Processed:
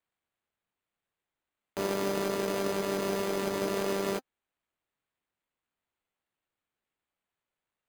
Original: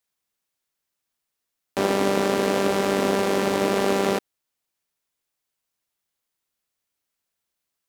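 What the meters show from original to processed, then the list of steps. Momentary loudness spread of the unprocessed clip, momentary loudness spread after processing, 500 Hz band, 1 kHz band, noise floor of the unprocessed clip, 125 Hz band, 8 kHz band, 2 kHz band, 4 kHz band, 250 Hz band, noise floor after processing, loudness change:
4 LU, 4 LU, -8.5 dB, -10.5 dB, -82 dBFS, -8.5 dB, -6.5 dB, -10.0 dB, -8.5 dB, -9.5 dB, under -85 dBFS, -9.0 dB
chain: notch comb 260 Hz; sample-and-hold 8×; gain -8 dB

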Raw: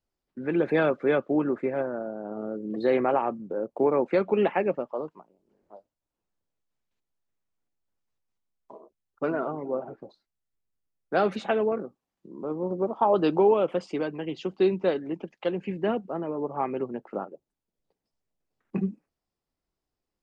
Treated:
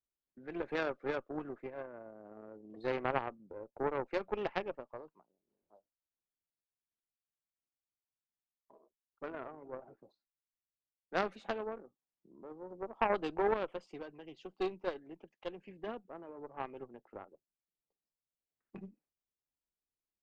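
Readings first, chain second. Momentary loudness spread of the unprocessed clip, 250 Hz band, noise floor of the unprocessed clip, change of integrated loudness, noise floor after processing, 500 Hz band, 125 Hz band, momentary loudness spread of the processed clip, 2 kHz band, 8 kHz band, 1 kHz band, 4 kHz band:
12 LU, -16.0 dB, under -85 dBFS, -12.0 dB, under -85 dBFS, -13.5 dB, -15.0 dB, 18 LU, -7.5 dB, n/a, -10.0 dB, -8.0 dB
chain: dynamic EQ 190 Hz, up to -5 dB, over -38 dBFS, Q 0.87; added harmonics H 2 -14 dB, 3 -12 dB, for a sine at -11 dBFS; gain -4.5 dB

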